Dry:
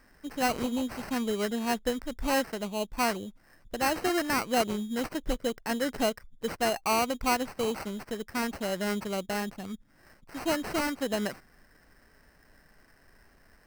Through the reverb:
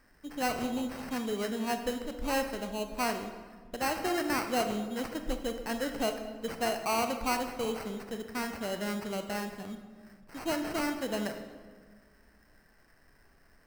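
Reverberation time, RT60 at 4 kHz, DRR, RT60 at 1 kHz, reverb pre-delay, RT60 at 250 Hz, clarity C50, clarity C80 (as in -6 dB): 1.6 s, 1.0 s, 6.0 dB, 1.4 s, 21 ms, 2.0 s, 7.5 dB, 9.5 dB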